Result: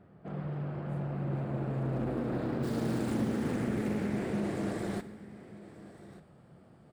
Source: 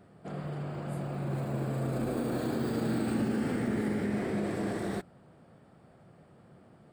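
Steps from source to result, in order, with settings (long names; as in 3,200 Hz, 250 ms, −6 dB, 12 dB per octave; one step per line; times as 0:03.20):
bass and treble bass +3 dB, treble −15 dB, from 0:02.62 treble +2 dB
single-tap delay 1,188 ms −17 dB
convolution reverb, pre-delay 3 ms, DRR 12.5 dB
highs frequency-modulated by the lows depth 0.35 ms
level −2.5 dB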